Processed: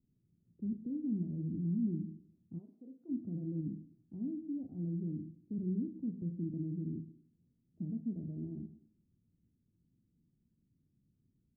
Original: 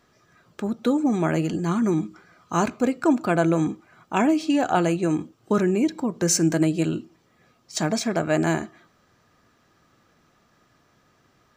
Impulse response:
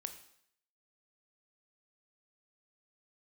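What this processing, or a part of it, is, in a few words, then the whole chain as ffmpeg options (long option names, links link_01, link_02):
club heard from the street: -filter_complex "[0:a]alimiter=limit=-16.5dB:level=0:latency=1:release=33,lowpass=frequency=250:width=0.5412,lowpass=frequency=250:width=1.3066[link_01];[1:a]atrim=start_sample=2205[link_02];[link_01][link_02]afir=irnorm=-1:irlink=0,asplit=3[link_03][link_04][link_05];[link_03]afade=type=out:start_time=2.58:duration=0.02[link_06];[link_04]highpass=570,afade=type=in:start_time=2.58:duration=0.02,afade=type=out:start_time=3.08:duration=0.02[link_07];[link_05]afade=type=in:start_time=3.08:duration=0.02[link_08];[link_06][link_07][link_08]amix=inputs=3:normalize=0,volume=-5.5dB"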